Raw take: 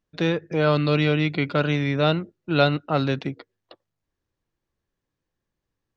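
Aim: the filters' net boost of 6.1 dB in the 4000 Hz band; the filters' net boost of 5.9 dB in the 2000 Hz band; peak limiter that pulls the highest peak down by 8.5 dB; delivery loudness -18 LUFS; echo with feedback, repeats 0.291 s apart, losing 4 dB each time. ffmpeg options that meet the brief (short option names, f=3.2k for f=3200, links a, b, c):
-af "equalizer=f=2k:t=o:g=6.5,equalizer=f=4k:t=o:g=5,alimiter=limit=-10dB:level=0:latency=1,aecho=1:1:291|582|873|1164|1455|1746|2037|2328|2619:0.631|0.398|0.25|0.158|0.0994|0.0626|0.0394|0.0249|0.0157,volume=3.5dB"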